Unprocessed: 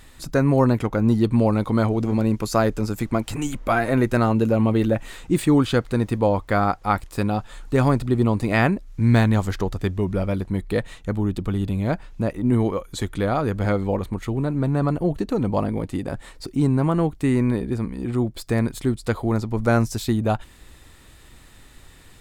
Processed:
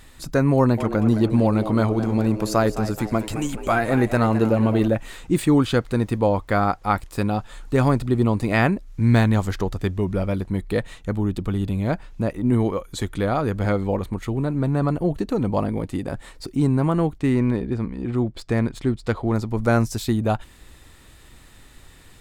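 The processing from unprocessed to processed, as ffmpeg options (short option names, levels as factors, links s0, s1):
-filter_complex "[0:a]asettb=1/sr,asplit=3[s0][s1][s2];[s0]atrim=end=0.564[s3];[s1]atrim=start=0.56:end=4.88,asetpts=PTS-STARTPTS,afade=t=in:d=0.004:c=qsin,afade=t=out:st=4.316:d=0.004:c=qsin,asplit=5[s4][s5][s6][s7][s8];[s5]adelay=214,afreqshift=100,volume=0.251[s9];[s6]adelay=428,afreqshift=200,volume=0.111[s10];[s7]adelay=642,afreqshift=300,volume=0.0484[s11];[s8]adelay=856,afreqshift=400,volume=0.0214[s12];[s4][s9][s10][s11][s12]amix=inputs=5:normalize=0,atrim=end_sample=190512[s13];[s2]atrim=start=4.876[s14];[s3][s13]acrossfade=d=0.004:c1=hsin:c2=qsin[s15];[s15][s14]acrossfade=d=0.004:c1=qsin:c2=hsin,asettb=1/sr,asplit=3[s16][s17][s18];[s16]atrim=end=17.184[s19];[s17]atrim=start=17.18:end=19.34,asetpts=PTS-STARTPTS,afade=t=in:d=0.004:c=qsin,afade=t=out:st=2.156:d=0.004:c=qsin,adynamicsmooth=sensitivity=6.5:basefreq=4500[s20];[s18]atrim=start=19.336[s21];[s19][s20]acrossfade=d=0.004:c1=hsin:c2=qsin[s22];[s22][s21]acrossfade=d=0.004:c1=qsin:c2=hsin"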